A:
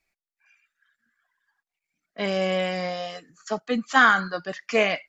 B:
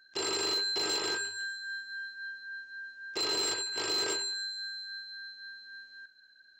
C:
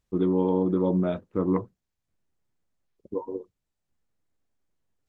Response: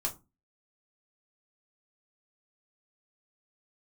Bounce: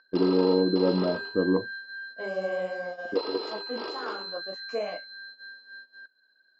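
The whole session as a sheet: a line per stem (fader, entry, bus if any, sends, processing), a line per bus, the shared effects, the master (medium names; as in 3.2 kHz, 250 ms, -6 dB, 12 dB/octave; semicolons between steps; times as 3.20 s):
-10.0 dB, 0.00 s, bus A, no send, bass shelf 330 Hz -10.5 dB; detune thickener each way 41 cents
+1.5 dB, 0.00 s, bus A, no send, tilt EQ +3 dB/octave; upward compressor, threshold -35 dBFS; rippled Chebyshev low-pass 5.1 kHz, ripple 3 dB
-10.0 dB, 0.00 s, no bus, no send, none
bus A: 0.0 dB, peak limiter -26 dBFS, peak gain reduction 11.5 dB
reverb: none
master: gate -40 dBFS, range -16 dB; graphic EQ 250/500/1000/2000/4000 Hz +9/+11/+6/-7/-7 dB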